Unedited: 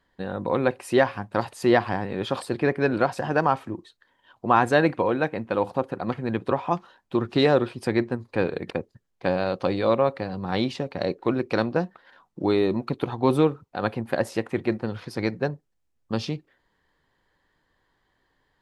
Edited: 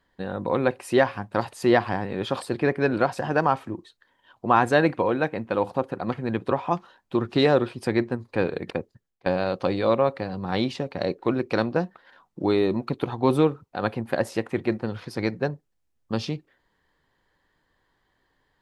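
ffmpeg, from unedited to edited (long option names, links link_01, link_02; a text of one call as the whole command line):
ffmpeg -i in.wav -filter_complex "[0:a]asplit=2[link_01][link_02];[link_01]atrim=end=9.26,asetpts=PTS-STARTPTS,afade=type=out:start_time=8.7:duration=0.56:curve=qsin:silence=0.11885[link_03];[link_02]atrim=start=9.26,asetpts=PTS-STARTPTS,afade=type=in:duration=0.004:curve=hsin:silence=0.11885[link_04];[link_03][link_04]concat=n=2:v=0:a=1" out.wav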